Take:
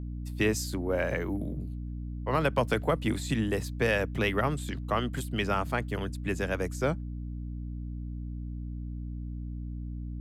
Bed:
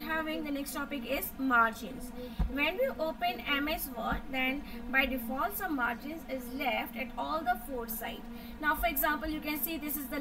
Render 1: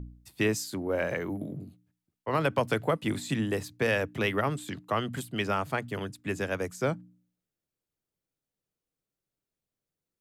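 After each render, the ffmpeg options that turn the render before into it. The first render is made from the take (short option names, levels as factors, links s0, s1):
-af "bandreject=f=60:t=h:w=4,bandreject=f=120:t=h:w=4,bandreject=f=180:t=h:w=4,bandreject=f=240:t=h:w=4,bandreject=f=300:t=h:w=4"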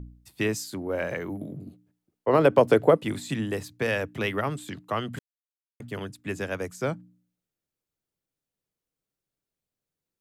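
-filter_complex "[0:a]asettb=1/sr,asplit=3[s0][s1][s2];[s0]atrim=end=1.664[s3];[s1]atrim=start=1.66:end=3.03,asetpts=PTS-STARTPTS,afade=t=in:d=0.004:c=qsin,afade=t=out:st=1.366:d=0.004:c=qsin,equalizer=f=430:t=o:w=2:g=11.5[s4];[s2]atrim=start=3.026[s5];[s3][s4]acrossfade=d=0.004:c1=hsin:c2=qsin[s6];[s6][s5]acrossfade=d=0.004:c1=qsin:c2=hsin,asplit=3[s7][s8][s9];[s7]atrim=end=5.19,asetpts=PTS-STARTPTS,afade=t=out:st=5.186:d=0.004:c=hsin[s10];[s8]atrim=start=5.19:end=5.8,asetpts=PTS-STARTPTS,volume=0[s11];[s9]atrim=start=5.8,asetpts=PTS-STARTPTS,afade=t=in:d=0.004:c=hsin[s12];[s10][s11][s12]concat=n=3:v=0:a=1"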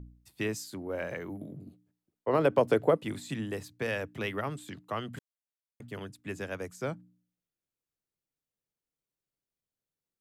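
-af "volume=0.501"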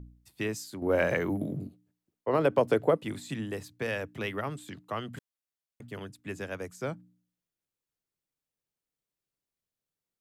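-filter_complex "[0:a]asplit=3[s0][s1][s2];[s0]atrim=end=0.822[s3];[s1]atrim=start=0.818:end=1.672,asetpts=PTS-STARTPTS,volume=2.99[s4];[s2]atrim=start=1.668[s5];[s3][s4]acrossfade=d=0.004:c1=hsin:c2=hsin[s6];[s6][s5]acrossfade=d=0.004:c1=hsin:c2=hsin"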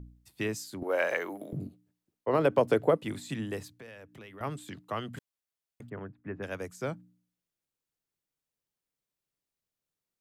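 -filter_complex "[0:a]asettb=1/sr,asplit=3[s0][s1][s2];[s0]atrim=end=0.834[s3];[s1]atrim=start=0.83:end=1.53,asetpts=PTS-STARTPTS,afade=t=in:d=0.004:c=qsin,afade=t=out:st=0.696:d=0.004:c=qsin,highpass=520[s4];[s2]atrim=start=1.526[s5];[s3][s4]acrossfade=d=0.004:c1=hsin:c2=qsin[s6];[s6][s5]acrossfade=d=0.004:c1=qsin:c2=hsin,asettb=1/sr,asplit=3[s7][s8][s9];[s7]atrim=end=3.754[s10];[s8]atrim=start=3.75:end=4.41,asetpts=PTS-STARTPTS,afade=t=in:d=0.004:c=qsin,afade=t=out:st=0.656:d=0.004:c=qsin,acompressor=threshold=0.00316:ratio=3:attack=3.2:release=140:knee=1:detection=peak[s11];[s9]atrim=start=4.406[s12];[s10][s11]acrossfade=d=0.004:c1=hsin:c2=qsin[s13];[s13][s12]acrossfade=d=0.004:c1=qsin:c2=hsin,asplit=3[s14][s15][s16];[s14]afade=t=out:st=5.88:d=0.02[s17];[s15]lowpass=f=1800:w=0.5412,lowpass=f=1800:w=1.3066,afade=t=in:st=5.88:d=0.02,afade=t=out:st=6.42:d=0.02[s18];[s16]afade=t=in:st=6.42:d=0.02[s19];[s17][s18][s19]amix=inputs=3:normalize=0"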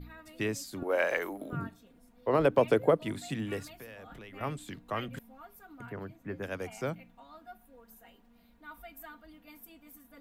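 -filter_complex "[1:a]volume=0.119[s0];[0:a][s0]amix=inputs=2:normalize=0"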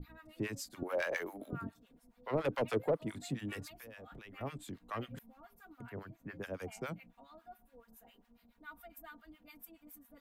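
-filter_complex "[0:a]asoftclip=type=tanh:threshold=0.0794,acrossover=split=840[s0][s1];[s0]aeval=exprs='val(0)*(1-1/2+1/2*cos(2*PI*7.2*n/s))':c=same[s2];[s1]aeval=exprs='val(0)*(1-1/2-1/2*cos(2*PI*7.2*n/s))':c=same[s3];[s2][s3]amix=inputs=2:normalize=0"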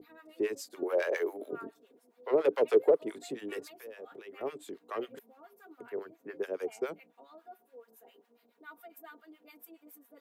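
-af "highpass=f=400:t=q:w=4.6"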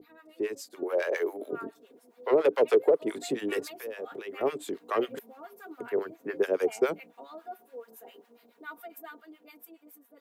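-af "dynaudnorm=f=490:g=7:m=2.82,alimiter=limit=0.237:level=0:latency=1:release=270"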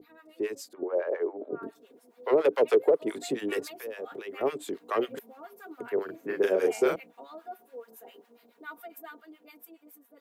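-filter_complex "[0:a]asettb=1/sr,asplit=3[s0][s1][s2];[s0]atrim=end=0.734[s3];[s1]atrim=start=0.73:end=1.63,asetpts=PTS-STARTPTS,afade=t=in:d=0.004:c=qsin,afade=t=out:st=0.896:d=0.004:c=qsin,lowpass=1100[s4];[s2]atrim=start=1.626[s5];[s3][s4]acrossfade=d=0.004:c1=hsin:c2=qsin[s6];[s6][s5]acrossfade=d=0.004:c1=qsin:c2=hsin,asettb=1/sr,asplit=3[s7][s8][s9];[s7]atrim=end=6.054[s10];[s8]atrim=start=6.05:end=6.96,asetpts=PTS-STARTPTS,afade=t=in:d=0.004:c=qsin,afade=t=out:st=0.906:d=0.004:c=qsin,asplit=2[s11][s12];[s12]adelay=37,volume=0.794[s13];[s11][s13]amix=inputs=2:normalize=0,atrim=end_sample=40131[s14];[s9]atrim=start=6.956[s15];[s10][s14]acrossfade=d=0.004:c1=hsin:c2=qsin[s16];[s16][s15]acrossfade=d=0.004:c1=qsin:c2=hsin"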